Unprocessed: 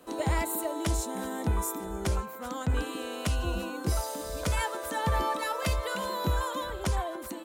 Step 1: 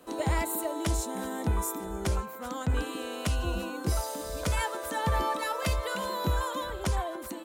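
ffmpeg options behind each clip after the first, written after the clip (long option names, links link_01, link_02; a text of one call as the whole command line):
ffmpeg -i in.wav -af anull out.wav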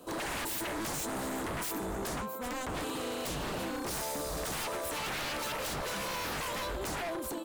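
ffmpeg -i in.wav -af "equalizer=frequency=1900:width_type=o:width=0.74:gain=-10,aeval=exprs='0.0188*(abs(mod(val(0)/0.0188+3,4)-2)-1)':channel_layout=same,volume=3.5dB" out.wav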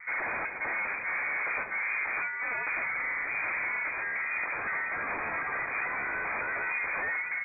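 ffmpeg -i in.wav -af "volume=35.5dB,asoftclip=hard,volume=-35.5dB,lowpass=frequency=2100:width_type=q:width=0.5098,lowpass=frequency=2100:width_type=q:width=0.6013,lowpass=frequency=2100:width_type=q:width=0.9,lowpass=frequency=2100:width_type=q:width=2.563,afreqshift=-2500,volume=6.5dB" out.wav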